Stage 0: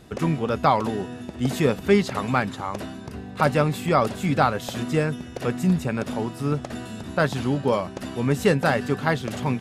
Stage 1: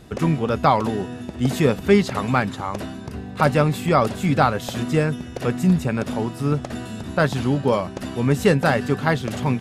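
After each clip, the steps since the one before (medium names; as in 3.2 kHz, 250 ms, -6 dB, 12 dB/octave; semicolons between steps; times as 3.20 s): bass shelf 150 Hz +3.5 dB; trim +2 dB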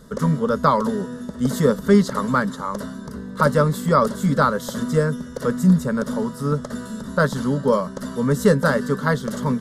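static phaser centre 500 Hz, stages 8; trim +3 dB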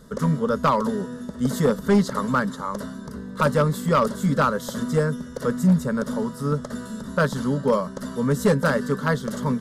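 hard clipper -10 dBFS, distortion -18 dB; trim -2 dB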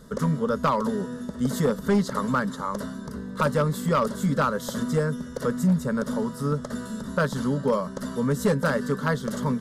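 compression 1.5:1, threshold -24 dBFS, peak gain reduction 4 dB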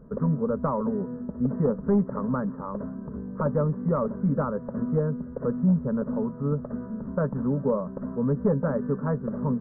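Gaussian low-pass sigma 8 samples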